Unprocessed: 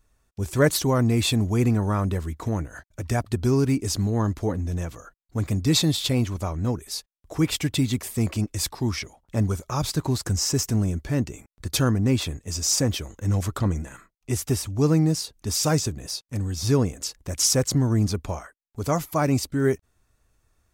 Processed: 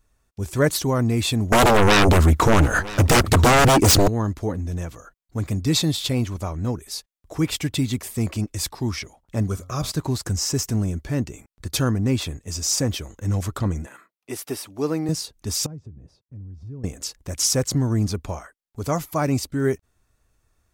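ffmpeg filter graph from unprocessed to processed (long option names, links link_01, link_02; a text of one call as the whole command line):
ffmpeg -i in.wav -filter_complex "[0:a]asettb=1/sr,asplit=3[link_01][link_02][link_03];[link_01]atrim=end=1.524[link_04];[link_02]atrim=start=1.52:end=4.08,asetpts=PTS-STARTPTS,afade=type=in:duration=0.004:curve=qsin,afade=type=out:start_time=2.556:duration=0.004:curve=qsin,equalizer=frequency=1300:width_type=o:width=0.41:gain=5.5,aeval=exprs='0.282*sin(PI/2*5.62*val(0)/0.282)':channel_layout=same,aecho=1:1:969:0.133,atrim=end_sample=112896[link_05];[link_03]atrim=start=4.076[link_06];[link_04][link_05]acrossfade=duration=0.004:curve1=hsin:curve2=qsin[link_07];[link_07][link_06]acrossfade=duration=0.004:curve1=qsin:curve2=hsin,asettb=1/sr,asplit=3[link_08][link_09][link_10];[link_08]atrim=end=9.434[link_11];[link_09]atrim=start=9.43:end=9.92,asetpts=PTS-STARTPTS,afade=type=in:duration=0.004:curve=qsin,afade=type=out:start_time=0.486:duration=0.004:curve=qsin,asuperstop=centerf=890:order=4:qfactor=5.7,bandreject=frequency=89.47:width_type=h:width=4,bandreject=frequency=178.94:width_type=h:width=4,bandreject=frequency=268.41:width_type=h:width=4,bandreject=frequency=357.88:width_type=h:width=4,bandreject=frequency=447.35:width_type=h:width=4,bandreject=frequency=536.82:width_type=h:width=4,bandreject=frequency=626.29:width_type=h:width=4,bandreject=frequency=715.76:width_type=h:width=4,bandreject=frequency=805.23:width_type=h:width=4,bandreject=frequency=894.7:width_type=h:width=4,bandreject=frequency=984.17:width_type=h:width=4,bandreject=frequency=1073.64:width_type=h:width=4,bandreject=frequency=1163.11:width_type=h:width=4,bandreject=frequency=1252.58:width_type=h:width=4,bandreject=frequency=1342.05:width_type=h:width=4[link_12];[link_10]atrim=start=9.916[link_13];[link_11][link_12]acrossfade=duration=0.004:curve1=hsin:curve2=qsin[link_14];[link_14][link_13]acrossfade=duration=0.004:curve1=qsin:curve2=hsin,asettb=1/sr,asplit=3[link_15][link_16][link_17];[link_15]atrim=end=13.864[link_18];[link_16]atrim=start=13.86:end=15.09,asetpts=PTS-STARTPTS,afade=type=in:duration=0.004:curve=qsin,afade=type=out:start_time=1.226:duration=0.004:curve=qsin,highpass=300,equalizer=frequency=6900:width_type=o:width=0.63:gain=-8[link_19];[link_17]atrim=start=15.086[link_20];[link_18][link_19]acrossfade=duration=0.004:curve1=hsin:curve2=qsin[link_21];[link_21][link_20]acrossfade=duration=0.004:curve1=qsin:curve2=hsin,asettb=1/sr,asplit=3[link_22][link_23][link_24];[link_22]atrim=end=15.664[link_25];[link_23]atrim=start=15.66:end=16.84,asetpts=PTS-STARTPTS,afade=type=in:duration=0.004:curve=qsin,afade=type=out:start_time=1.176:duration=0.004:curve=qsin,bandpass=frequency=100:width_type=q:width=0.71,acompressor=threshold=-43dB:ratio=2:attack=3.2:release=140:knee=1:detection=peak[link_26];[link_24]atrim=start=16.836[link_27];[link_25][link_26]acrossfade=duration=0.004:curve1=hsin:curve2=qsin[link_28];[link_28][link_27]acrossfade=duration=0.004:curve1=qsin:curve2=hsin" out.wav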